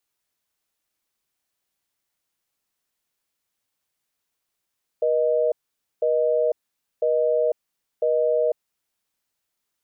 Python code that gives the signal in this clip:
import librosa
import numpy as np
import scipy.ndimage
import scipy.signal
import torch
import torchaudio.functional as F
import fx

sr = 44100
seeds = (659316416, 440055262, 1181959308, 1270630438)

y = fx.call_progress(sr, length_s=3.62, kind='busy tone', level_db=-20.5)